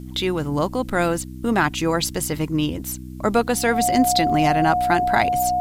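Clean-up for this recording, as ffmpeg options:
-af "bandreject=f=63.2:t=h:w=4,bandreject=f=126.4:t=h:w=4,bandreject=f=189.6:t=h:w=4,bandreject=f=252.8:t=h:w=4,bandreject=f=316:t=h:w=4,bandreject=f=720:w=30,agate=range=0.0891:threshold=0.0501"

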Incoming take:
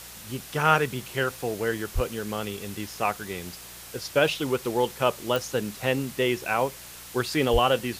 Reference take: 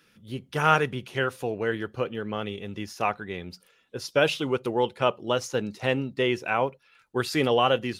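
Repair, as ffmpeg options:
-filter_complex "[0:a]adeclick=t=4,bandreject=f=59.1:t=h:w=4,bandreject=f=118.2:t=h:w=4,bandreject=f=177.3:t=h:w=4,asplit=3[s0][s1][s2];[s0]afade=t=out:st=1.94:d=0.02[s3];[s1]highpass=f=140:w=0.5412,highpass=f=140:w=1.3066,afade=t=in:st=1.94:d=0.02,afade=t=out:st=2.06:d=0.02[s4];[s2]afade=t=in:st=2.06:d=0.02[s5];[s3][s4][s5]amix=inputs=3:normalize=0,asplit=3[s6][s7][s8];[s6]afade=t=out:st=7.52:d=0.02[s9];[s7]highpass=f=140:w=0.5412,highpass=f=140:w=1.3066,afade=t=in:st=7.52:d=0.02,afade=t=out:st=7.64:d=0.02[s10];[s8]afade=t=in:st=7.64:d=0.02[s11];[s9][s10][s11]amix=inputs=3:normalize=0,afwtdn=0.0079"

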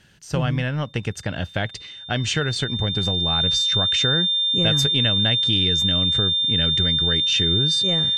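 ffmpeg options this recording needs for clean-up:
-af "bandreject=f=3600:w=30"

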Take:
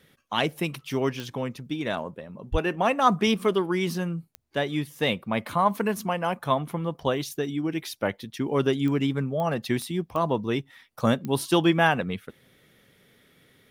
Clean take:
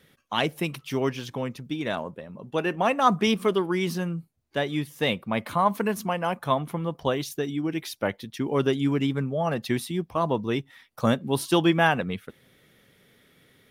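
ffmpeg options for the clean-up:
-filter_complex "[0:a]adeclick=t=4,asplit=3[s0][s1][s2];[s0]afade=t=out:st=2.51:d=0.02[s3];[s1]highpass=f=140:w=0.5412,highpass=f=140:w=1.3066,afade=t=in:st=2.51:d=0.02,afade=t=out:st=2.63:d=0.02[s4];[s2]afade=t=in:st=2.63:d=0.02[s5];[s3][s4][s5]amix=inputs=3:normalize=0"

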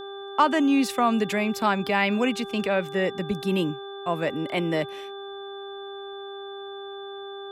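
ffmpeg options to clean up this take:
-af "bandreject=f=396.2:t=h:w=4,bandreject=f=792.4:t=h:w=4,bandreject=f=1188.6:t=h:w=4,bandreject=f=1584.8:t=h:w=4,bandreject=f=3500:w=30"

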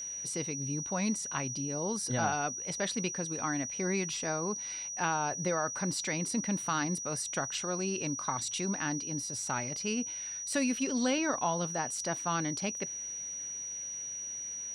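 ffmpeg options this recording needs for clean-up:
-af "bandreject=f=5800:w=30"

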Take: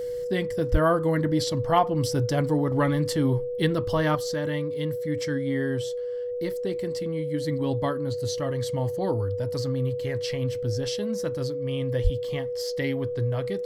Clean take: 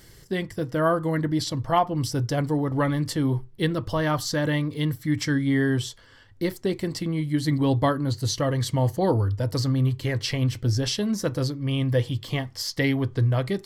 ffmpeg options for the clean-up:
-filter_complex "[0:a]bandreject=f=490:w=30,asplit=3[s0][s1][s2];[s0]afade=t=out:st=0.71:d=0.02[s3];[s1]highpass=f=140:w=0.5412,highpass=f=140:w=1.3066,afade=t=in:st=0.71:d=0.02,afade=t=out:st=0.83:d=0.02[s4];[s2]afade=t=in:st=0.83:d=0.02[s5];[s3][s4][s5]amix=inputs=3:normalize=0,asplit=3[s6][s7][s8];[s6]afade=t=out:st=12.03:d=0.02[s9];[s7]highpass=f=140:w=0.5412,highpass=f=140:w=1.3066,afade=t=in:st=12.03:d=0.02,afade=t=out:st=12.15:d=0.02[s10];[s8]afade=t=in:st=12.15:d=0.02[s11];[s9][s10][s11]amix=inputs=3:normalize=0,asetnsamples=n=441:p=0,asendcmd='4.15 volume volume 6dB',volume=1"

